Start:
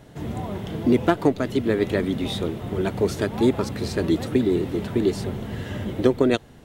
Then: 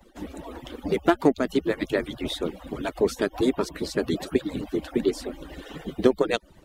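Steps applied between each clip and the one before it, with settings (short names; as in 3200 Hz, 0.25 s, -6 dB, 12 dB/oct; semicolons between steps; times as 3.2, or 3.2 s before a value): median-filter separation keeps percussive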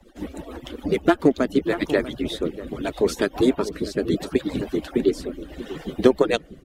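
outdoor echo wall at 110 m, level -13 dB; rotary speaker horn 7 Hz, later 0.7 Hz, at 0.85; gain +4.5 dB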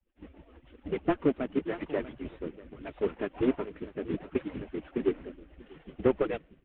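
CVSD 16 kbps; three-band expander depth 70%; gain -9 dB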